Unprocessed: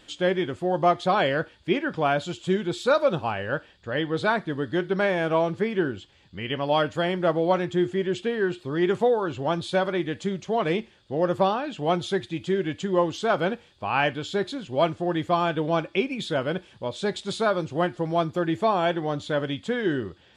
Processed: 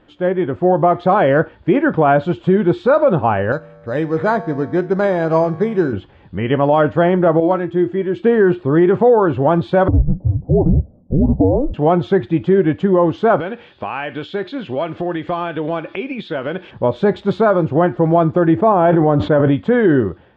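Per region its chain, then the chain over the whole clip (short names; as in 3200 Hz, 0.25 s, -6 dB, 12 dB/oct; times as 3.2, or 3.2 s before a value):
3.52–5.93 resonator 53 Hz, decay 2 s, harmonics odd + careless resampling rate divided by 8×, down none, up hold
7.4–8.24 high shelf 4400 Hz +6.5 dB + resonator 330 Hz, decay 0.17 s, mix 70%
9.88–11.74 frequency shift -290 Hz + steep low-pass 690 Hz
13.4–16.71 weighting filter D + compressor 3:1, threshold -36 dBFS
18.55–19.52 high shelf 2900 Hz -10.5 dB + sustainer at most 32 dB/s
whole clip: LPF 1300 Hz 12 dB/oct; AGC gain up to 11 dB; maximiser +8.5 dB; gain -3.5 dB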